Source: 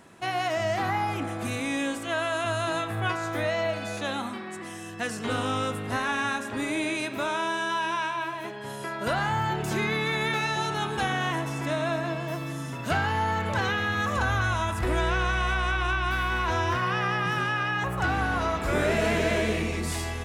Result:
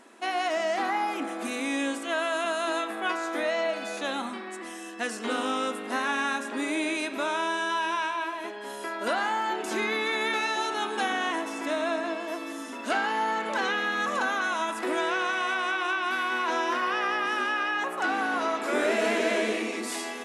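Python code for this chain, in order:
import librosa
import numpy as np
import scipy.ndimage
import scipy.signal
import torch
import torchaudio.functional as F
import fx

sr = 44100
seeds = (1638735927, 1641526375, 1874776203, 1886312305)

y = fx.brickwall_bandpass(x, sr, low_hz=210.0, high_hz=12000.0)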